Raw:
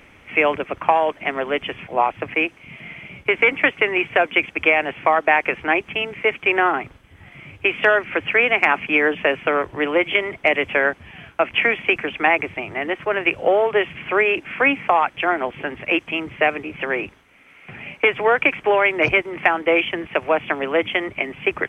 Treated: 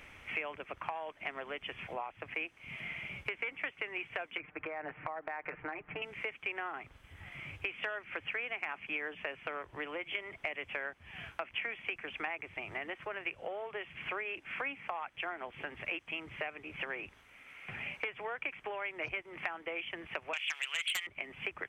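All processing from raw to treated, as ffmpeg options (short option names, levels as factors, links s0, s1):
-filter_complex "[0:a]asettb=1/sr,asplit=3[s0][s1][s2];[s0]atrim=end=4.374[s3];[s1]atrim=start=4.37:end=6.02,asetpts=PTS-STARTPTS,afade=t=in:d=0.004:c=qsin,afade=t=out:st=1.646:d=0.004:c=qsin,lowpass=f=1900:w=0.5412,lowpass=f=1900:w=1.3066,aecho=1:1:6.6:0.76,atrim=end_sample=72765,acompressor=threshold=0.126:ratio=6:attack=3.2:release=140:knee=1:detection=peak[s4];[s2]atrim=start=6.016[s5];[s3][s4]acrossfade=d=0.004:c1=hsin:c2=qsin[s6];[s6][s5]acrossfade=d=0.004:c1=qsin:c2=hsin,asettb=1/sr,asplit=3[s7][s8][s9];[s7]atrim=end=20.334[s10];[s8]atrim=start=20.33:end=21.07,asetpts=PTS-STARTPTS,afade=t=in:d=0.004:c=qsin,afade=t=out:st=0.736:d=0.004:c=qsin,highpass=f=2800:t=q:w=2.1,aeval=exprs='0.596*sin(PI/2*3.98*val(0)/0.596)':c=same[s11];[s9]atrim=start=21.066[s12];[s10][s11]acrossfade=d=0.004:c1=hsin:c2=qsin[s13];[s13][s12]acrossfade=d=0.004:c1=qsin:c2=hsin,acompressor=threshold=0.0251:ratio=5,equalizer=f=270:w=0.5:g=-7.5,volume=0.668"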